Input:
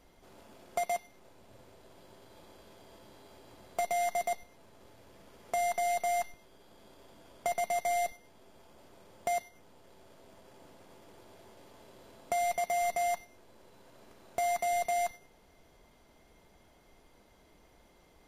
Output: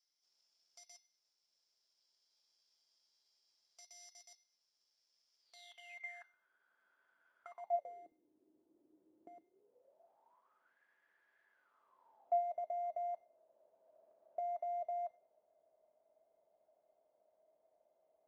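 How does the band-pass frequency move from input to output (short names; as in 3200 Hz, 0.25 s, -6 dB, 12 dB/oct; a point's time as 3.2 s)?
band-pass, Q 13
5.39 s 5300 Hz
6.27 s 1500 Hz
7.42 s 1500 Hz
8.06 s 320 Hz
9.41 s 320 Hz
10.79 s 1700 Hz
11.49 s 1700 Hz
12.44 s 630 Hz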